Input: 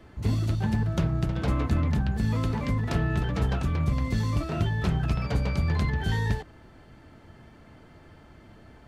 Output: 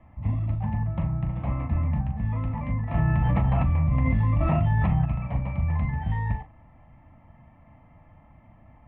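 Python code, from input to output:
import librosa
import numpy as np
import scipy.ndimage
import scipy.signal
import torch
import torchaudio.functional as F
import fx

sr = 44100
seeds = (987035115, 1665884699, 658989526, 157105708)

y = scipy.signal.sosfilt(scipy.signal.butter(4, 2000.0, 'lowpass', fs=sr, output='sos'), x)
y = fx.fixed_phaser(y, sr, hz=1500.0, stages=6)
y = fx.doubler(y, sr, ms=39.0, db=-9)
y = fx.env_flatten(y, sr, amount_pct=100, at=(2.94, 5.05))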